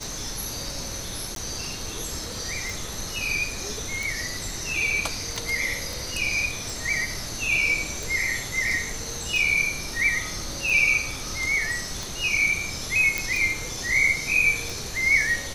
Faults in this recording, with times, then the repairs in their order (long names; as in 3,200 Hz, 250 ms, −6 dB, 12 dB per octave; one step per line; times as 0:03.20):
scratch tick 45 rpm
0:01.35–0:01.36: drop-out 12 ms
0:05.93: click
0:13.18: click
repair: click removal
repair the gap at 0:01.35, 12 ms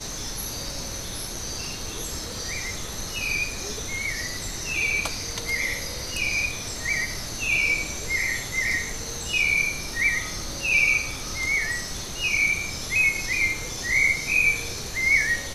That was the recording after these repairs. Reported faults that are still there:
0:05.93: click